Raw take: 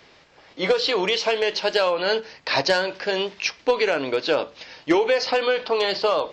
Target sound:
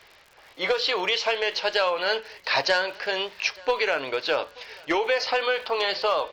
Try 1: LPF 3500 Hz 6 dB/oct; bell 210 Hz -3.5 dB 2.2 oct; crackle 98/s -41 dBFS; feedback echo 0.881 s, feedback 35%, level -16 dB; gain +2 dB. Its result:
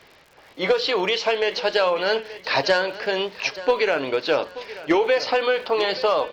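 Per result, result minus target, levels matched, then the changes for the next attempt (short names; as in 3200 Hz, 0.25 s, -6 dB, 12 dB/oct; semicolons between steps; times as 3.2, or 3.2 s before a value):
echo-to-direct +8.5 dB; 250 Hz band +5.5 dB
change: feedback echo 0.881 s, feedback 35%, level -24.5 dB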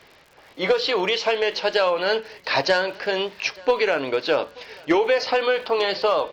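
250 Hz band +5.5 dB
change: bell 210 Hz -15 dB 2.2 oct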